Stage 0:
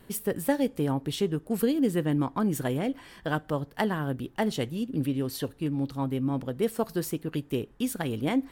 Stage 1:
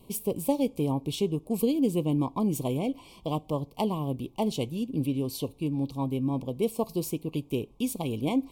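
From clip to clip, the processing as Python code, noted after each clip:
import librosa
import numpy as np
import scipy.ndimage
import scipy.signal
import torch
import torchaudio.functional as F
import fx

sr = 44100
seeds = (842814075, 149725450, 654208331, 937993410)

y = scipy.signal.sosfilt(scipy.signal.ellip(3, 1.0, 40, [1100.0, 2300.0], 'bandstop', fs=sr, output='sos'), x)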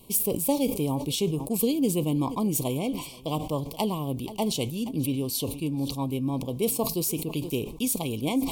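y = fx.high_shelf(x, sr, hz=3200.0, db=10.0)
y = y + 10.0 ** (-22.5 / 20.0) * np.pad(y, (int(479 * sr / 1000.0), 0))[:len(y)]
y = fx.sustainer(y, sr, db_per_s=84.0)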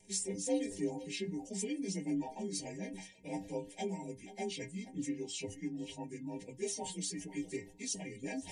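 y = fx.partial_stretch(x, sr, pct=88)
y = fx.dereverb_blind(y, sr, rt60_s=0.5)
y = fx.stiff_resonator(y, sr, f0_hz=94.0, decay_s=0.28, stiffness=0.008)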